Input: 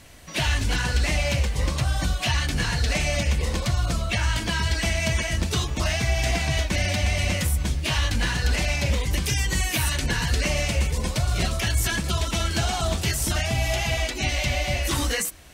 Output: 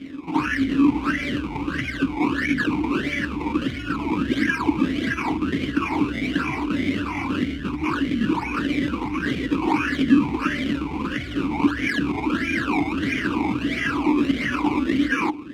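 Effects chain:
parametric band 1,600 Hz +11.5 dB 0.29 octaves
in parallel at +0.5 dB: compressor whose output falls as the input rises −28 dBFS, ratio −0.5
on the sum: sample-and-hold swept by an LFO 21×, swing 100% 1.5 Hz
boost into a limiter +11 dB
formant filter swept between two vowels i-u 1.6 Hz
level +1.5 dB

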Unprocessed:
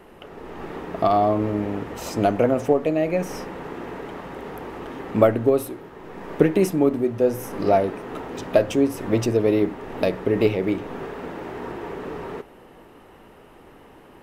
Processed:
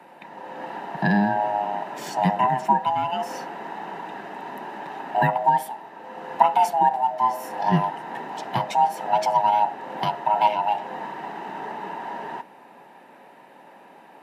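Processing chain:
neighbouring bands swapped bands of 500 Hz
Butterworth high-pass 160 Hz 36 dB per octave
high-shelf EQ 7,800 Hz −6 dB

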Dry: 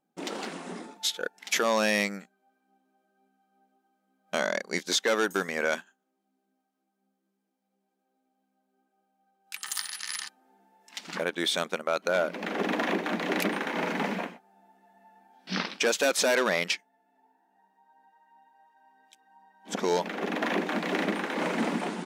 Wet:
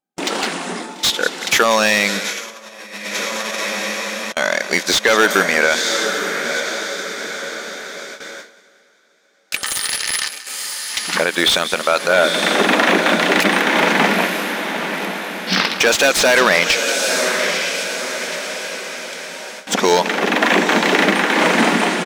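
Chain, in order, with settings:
feedback delay with all-pass diffusion 934 ms, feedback 52%, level −8.5 dB
noise gate with hold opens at −37 dBFS
repeating echo 184 ms, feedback 53%, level −17.5 dB
0:02.19–0:04.37: compressor whose output falls as the input rises −41 dBFS, ratio −0.5
tilt shelving filter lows −4 dB, about 850 Hz
boost into a limiter +15.5 dB
slew-rate limiting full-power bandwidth 1,200 Hz
level −1 dB

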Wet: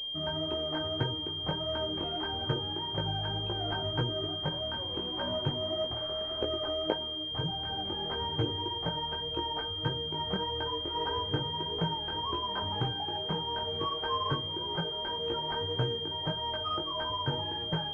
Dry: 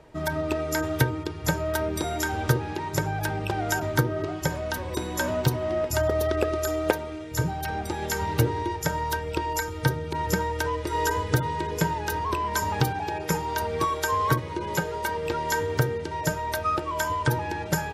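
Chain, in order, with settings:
0:05.92–0:06.42: hard clipping −29.5 dBFS, distortion −17 dB
chorus effect 1.7 Hz, delay 17 ms, depth 3.9 ms
switching amplifier with a slow clock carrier 3,200 Hz
level −4.5 dB

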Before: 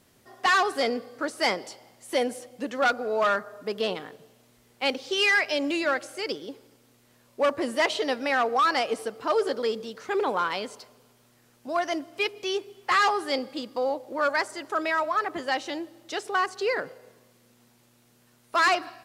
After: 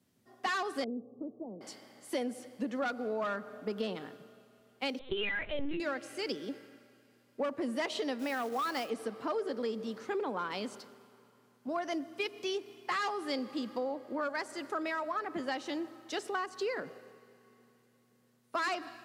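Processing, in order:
parametric band 220 Hz +9.5 dB 1.2 octaves
comb and all-pass reverb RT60 4.8 s, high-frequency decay 1×, pre-delay 55 ms, DRR 20 dB
0:08.19–0:08.90: floating-point word with a short mantissa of 2 bits
high-pass filter 88 Hz
0:04.99–0:05.80: linear-prediction vocoder at 8 kHz pitch kept
downward compressor 6 to 1, threshold −27 dBFS, peak gain reduction 10 dB
0:00.84–0:01.61: Gaussian smoothing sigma 15 samples
multiband upward and downward expander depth 40%
level −4.5 dB

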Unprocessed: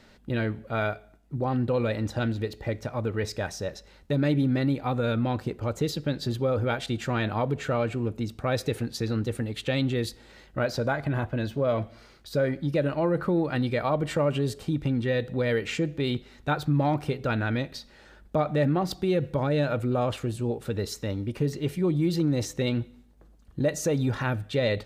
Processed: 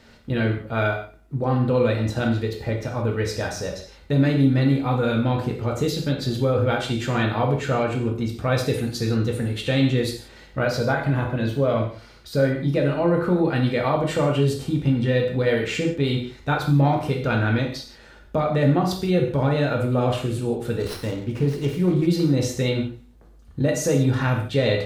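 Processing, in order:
convolution reverb, pre-delay 3 ms, DRR 0 dB
0:20.80–0:22.07: windowed peak hold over 5 samples
level +2 dB

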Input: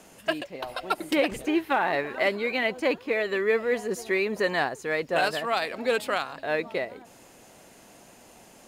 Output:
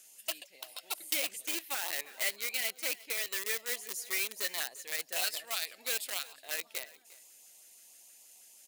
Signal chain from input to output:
auto-filter notch saw up 6.3 Hz 840–1,800 Hz
in parallel at −5 dB: bit reduction 4 bits
on the sum: first difference
single-tap delay 352 ms −20.5 dB

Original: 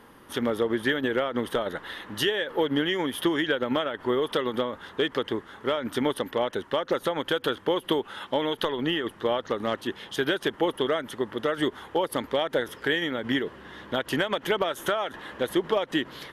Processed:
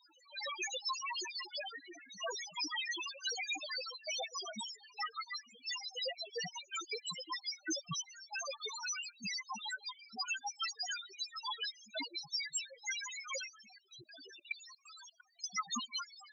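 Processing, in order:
cochlear-implant simulation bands 1
spectral peaks only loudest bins 1
0:13.78–0:15.44: output level in coarse steps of 21 dB
level +8.5 dB

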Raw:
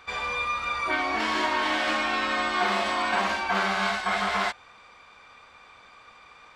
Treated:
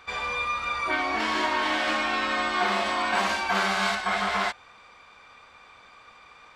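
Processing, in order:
0:03.15–0:03.95: high-shelf EQ 5,300 Hz +8 dB

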